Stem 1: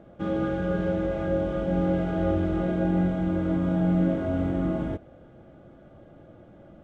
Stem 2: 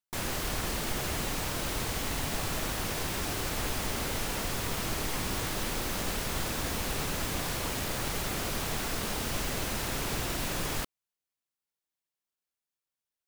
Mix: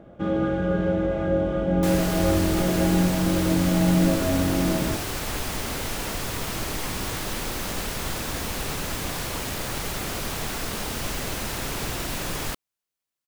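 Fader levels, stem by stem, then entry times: +3.0, +3.0 dB; 0.00, 1.70 s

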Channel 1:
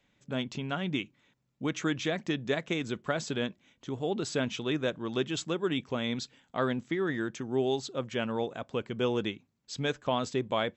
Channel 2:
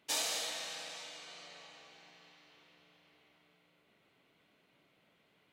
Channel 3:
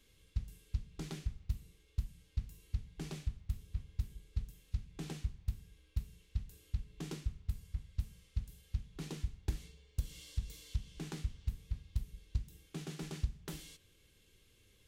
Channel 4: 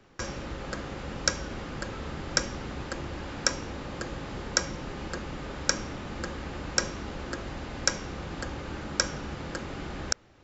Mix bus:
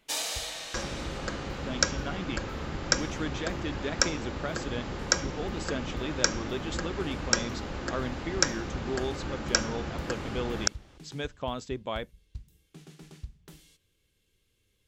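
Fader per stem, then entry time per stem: -4.5, +2.5, -6.0, +1.0 dB; 1.35, 0.00, 0.00, 0.55 s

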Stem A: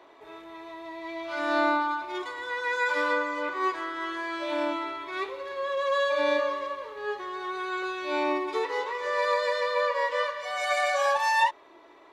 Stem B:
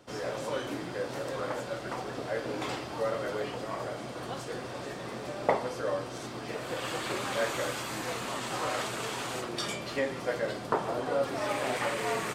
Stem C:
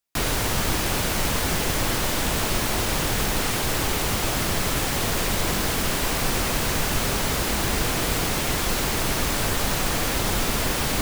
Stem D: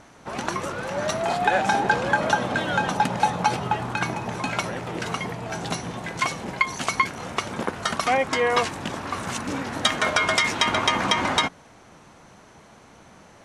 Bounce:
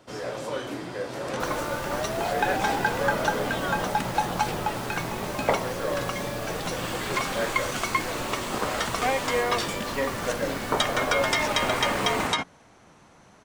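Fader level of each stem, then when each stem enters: -11.5, +2.0, -15.5, -4.5 dB; 0.00, 0.00, 1.25, 0.95 s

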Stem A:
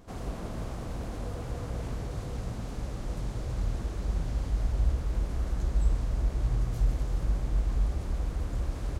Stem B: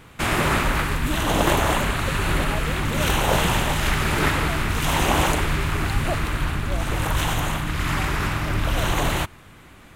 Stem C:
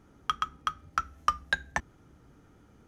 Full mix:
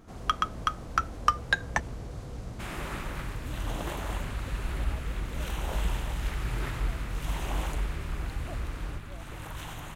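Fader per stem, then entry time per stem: -4.5, -17.0, +2.5 dB; 0.00, 2.40, 0.00 s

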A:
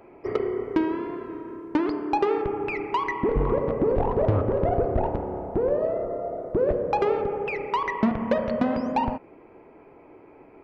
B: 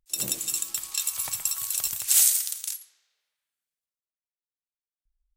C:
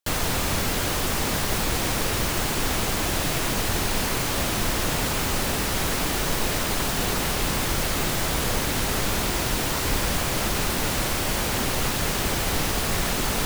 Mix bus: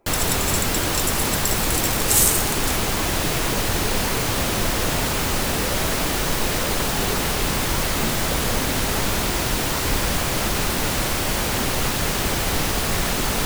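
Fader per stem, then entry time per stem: -11.5, +1.5, +2.5 dB; 0.00, 0.00, 0.00 s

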